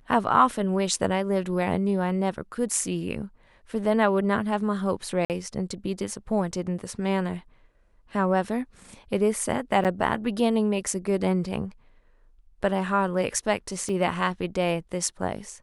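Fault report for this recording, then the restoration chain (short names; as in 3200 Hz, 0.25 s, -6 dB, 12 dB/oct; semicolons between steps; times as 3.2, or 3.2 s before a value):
5.25–5.3 gap 48 ms
9.84–9.85 gap 8.1 ms
13.89 gap 2.9 ms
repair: interpolate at 5.25, 48 ms; interpolate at 9.84, 8.1 ms; interpolate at 13.89, 2.9 ms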